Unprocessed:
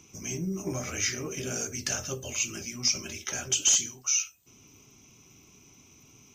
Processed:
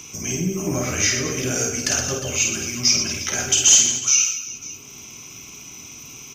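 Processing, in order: on a send: reverse bouncing-ball echo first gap 50 ms, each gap 1.4×, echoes 5; on the sum: mismatched tape noise reduction encoder only; gain +8 dB

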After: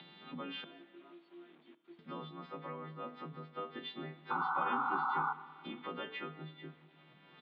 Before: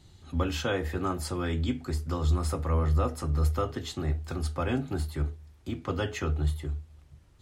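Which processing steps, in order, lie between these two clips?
frequency quantiser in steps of 2 st; upward compressor, threshold -30 dBFS; 0.64–1.99 resonator 340 Hz, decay 0.3 s, harmonics all, mix 100%; outdoor echo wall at 31 m, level -24 dB; bit-crush 9-bit; compressor, threshold -29 dBFS, peak gain reduction 8 dB; 4.3–5.33 painted sound noise 750–1500 Hz -27 dBFS; Chebyshev band-pass 160–3600 Hz, order 5; reverb RT60 2.0 s, pre-delay 5 ms, DRR 15 dB; gain -7 dB

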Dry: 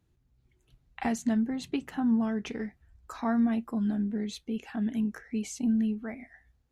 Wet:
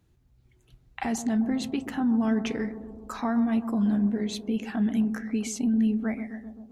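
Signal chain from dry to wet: limiter -24.5 dBFS, peak gain reduction 7.5 dB; on a send: analogue delay 0.13 s, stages 1024, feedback 69%, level -11 dB; on the sum: gain +5.5 dB

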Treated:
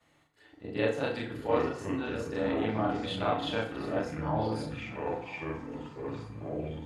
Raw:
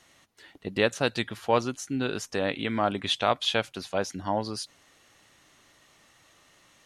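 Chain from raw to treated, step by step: short-time reversal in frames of 91 ms; high shelf 2500 Hz -9.5 dB; notch 5800 Hz, Q 5.6; echoes that change speed 0.425 s, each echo -6 st, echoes 2, each echo -6 dB; delay with a stepping band-pass 0.33 s, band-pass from 160 Hz, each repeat 1.4 oct, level -7.5 dB; FDN reverb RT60 0.69 s, low-frequency decay 0.75×, high-frequency decay 0.65×, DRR 2 dB; gain -2.5 dB

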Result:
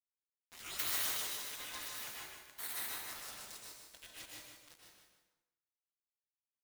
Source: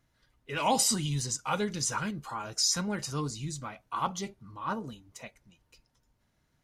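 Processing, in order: tracing distortion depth 0.034 ms; bell 2600 Hz -9 dB 1.3 oct; spectral gate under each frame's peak -25 dB weak; requantised 8-bit, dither none; low shelf 410 Hz -11 dB; feedback echo 0.152 s, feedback 57%, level -5 dB; crossover distortion -57 dBFS; plate-style reverb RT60 0.96 s, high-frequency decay 0.8×, pre-delay 0.105 s, DRR -3 dB; gain +1.5 dB

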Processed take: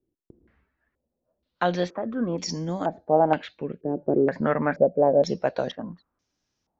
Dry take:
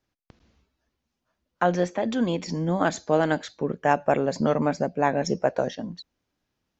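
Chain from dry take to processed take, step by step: 1.9–4.03 rotary speaker horn 1.2 Hz; stepped low-pass 2.1 Hz 370–5900 Hz; gain -2 dB

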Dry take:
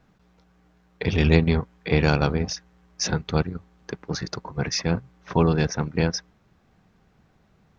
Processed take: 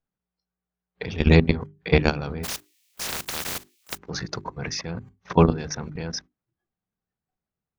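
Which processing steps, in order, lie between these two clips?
2.43–3.97 spectral contrast lowered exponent 0.13; level quantiser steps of 18 dB; notches 50/100/150/200/250/300/350/400 Hz; spectral noise reduction 23 dB; gain +6 dB

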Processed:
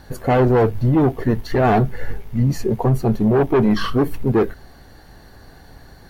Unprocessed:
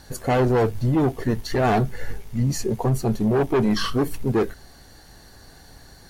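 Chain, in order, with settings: bell 7600 Hz -12 dB 1.9 oct; gain +4.5 dB

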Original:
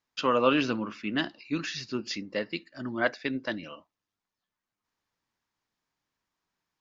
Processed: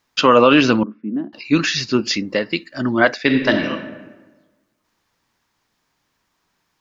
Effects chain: 0.83–1.33 ladder band-pass 270 Hz, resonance 50%; 2.07–2.71 compressor 4:1, threshold -31 dBFS, peak gain reduction 5 dB; 3.22–3.69 reverb throw, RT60 1.3 s, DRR 3.5 dB; maximiser +16 dB; gain -1 dB

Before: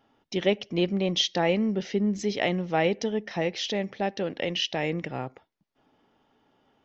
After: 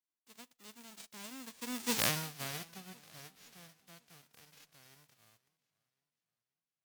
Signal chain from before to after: spectral whitening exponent 0.1; Doppler pass-by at 1.98, 57 m/s, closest 3.5 m; warbling echo 0.53 s, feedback 45%, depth 137 cents, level -22.5 dB; gain -1 dB

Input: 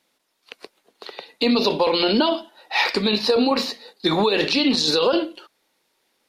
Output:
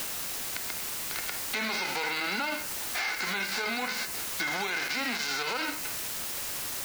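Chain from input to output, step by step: spectral whitening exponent 0.3; LPF 6600 Hz 24 dB/oct; speed mistake 48 kHz file played as 44.1 kHz; HPF 680 Hz 6 dB/oct; small resonant body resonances 1500/2100 Hz, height 11 dB, ringing for 25 ms; requantised 6-bit, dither triangular; limiter -17 dBFS, peak gain reduction 10.5 dB; dynamic EQ 3400 Hz, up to -8 dB, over -46 dBFS, Q 4.2; compressor 2.5:1, threshold -35 dBFS, peak gain reduction 8 dB; gain +3.5 dB

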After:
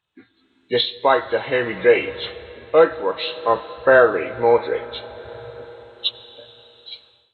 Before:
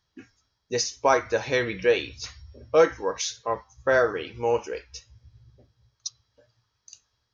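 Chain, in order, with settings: nonlinear frequency compression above 1600 Hz 1.5:1; 2.79–4.82 high shelf 5700 Hz -12 dB; reverb RT60 4.3 s, pre-delay 55 ms, DRR 15.5 dB; AGC gain up to 15 dB; HPF 200 Hz 6 dB/oct; gain -1 dB

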